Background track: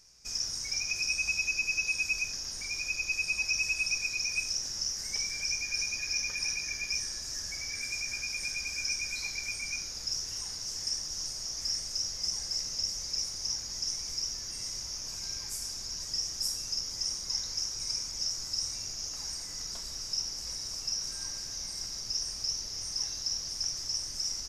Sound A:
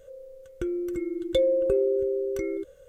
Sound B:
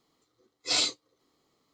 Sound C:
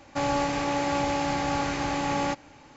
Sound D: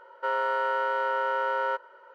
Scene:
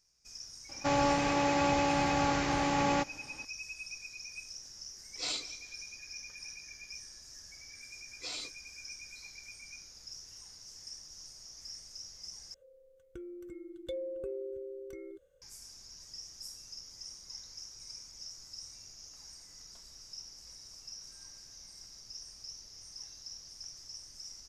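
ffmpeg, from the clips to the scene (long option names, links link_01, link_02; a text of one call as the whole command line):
ffmpeg -i bed.wav -i cue0.wav -i cue1.wav -i cue2.wav -filter_complex "[2:a]asplit=2[link_01][link_02];[0:a]volume=-13.5dB[link_03];[link_01]aecho=1:1:190|380|570:0.133|0.0507|0.0193[link_04];[link_02]acompressor=threshold=-28dB:ratio=6:attack=3.2:release=140:knee=1:detection=peak[link_05];[link_03]asplit=2[link_06][link_07];[link_06]atrim=end=12.544[link_08];[1:a]atrim=end=2.88,asetpts=PTS-STARTPTS,volume=-16dB[link_09];[link_07]atrim=start=15.416[link_10];[3:a]atrim=end=2.76,asetpts=PTS-STARTPTS,volume=-2dB,afade=type=in:duration=0.004:curve=hsin,afade=type=out:start_time=2.756:duration=0.004:curve=hsin,adelay=690[link_11];[link_04]atrim=end=1.73,asetpts=PTS-STARTPTS,volume=-10dB,afade=type=in:duration=0.004:curve=hsin,afade=type=out:start_time=1.726:duration=0.004:curve=hsin,adelay=4520[link_12];[link_05]atrim=end=1.73,asetpts=PTS-STARTPTS,volume=-8.5dB,afade=type=in:duration=0.004:curve=hsin,afade=type=out:start_time=1.726:duration=0.004:curve=hsin,adelay=7560[link_13];[link_08][link_09]acrossfade=duration=0.004:curve1=hsin:curve2=hsin[link_14];[link_14][link_10]acrossfade=duration=0.004:curve1=hsin:curve2=hsin[link_15];[link_15][link_11][link_12][link_13]amix=inputs=4:normalize=0" out.wav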